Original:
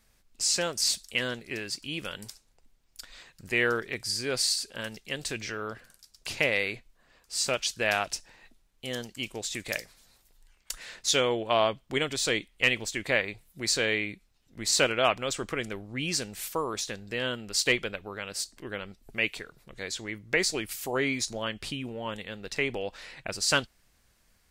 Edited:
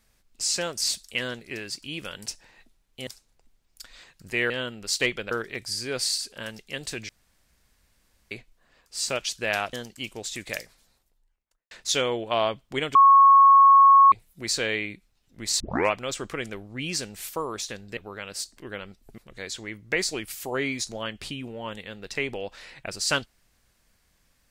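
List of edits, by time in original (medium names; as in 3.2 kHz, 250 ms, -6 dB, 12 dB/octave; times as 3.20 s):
5.47–6.69 s: room tone
8.11–8.92 s: move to 2.26 s
9.67–10.90 s: studio fade out
12.14–13.31 s: bleep 1.1 kHz -10.5 dBFS
14.79 s: tape start 0.32 s
17.16–17.97 s: move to 3.69 s
19.18–19.59 s: delete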